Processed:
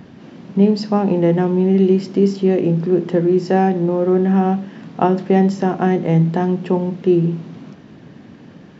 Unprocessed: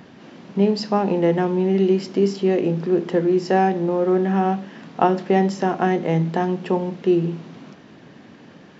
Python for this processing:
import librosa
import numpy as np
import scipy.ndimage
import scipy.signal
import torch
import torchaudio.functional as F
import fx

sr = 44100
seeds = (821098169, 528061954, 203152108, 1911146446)

y = fx.low_shelf(x, sr, hz=280.0, db=10.5)
y = y * 10.0 ** (-1.0 / 20.0)